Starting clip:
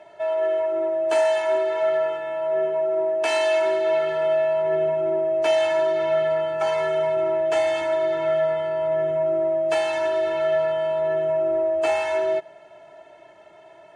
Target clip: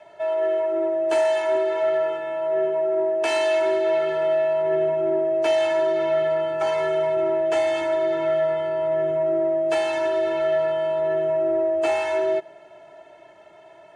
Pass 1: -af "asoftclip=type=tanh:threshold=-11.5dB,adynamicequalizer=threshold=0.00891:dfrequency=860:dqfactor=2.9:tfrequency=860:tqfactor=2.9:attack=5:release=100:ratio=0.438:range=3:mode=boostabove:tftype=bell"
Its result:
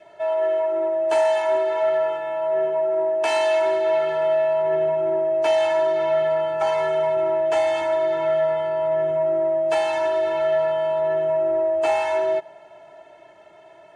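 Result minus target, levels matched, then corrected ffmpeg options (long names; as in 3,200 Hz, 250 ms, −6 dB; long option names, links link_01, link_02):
250 Hz band −6.0 dB
-af "asoftclip=type=tanh:threshold=-11.5dB,adynamicequalizer=threshold=0.00891:dfrequency=350:dqfactor=2.9:tfrequency=350:tqfactor=2.9:attack=5:release=100:ratio=0.438:range=3:mode=boostabove:tftype=bell"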